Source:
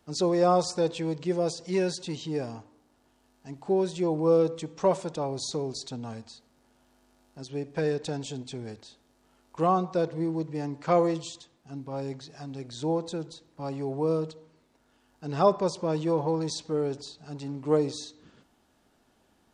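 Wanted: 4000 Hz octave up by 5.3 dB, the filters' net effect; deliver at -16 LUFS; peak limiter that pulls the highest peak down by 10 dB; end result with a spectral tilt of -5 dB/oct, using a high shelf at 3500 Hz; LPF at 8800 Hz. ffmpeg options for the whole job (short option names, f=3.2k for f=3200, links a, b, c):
-af "lowpass=8.8k,highshelf=f=3.5k:g=3.5,equalizer=f=4k:t=o:g=4,volume=15dB,alimiter=limit=-4dB:level=0:latency=1"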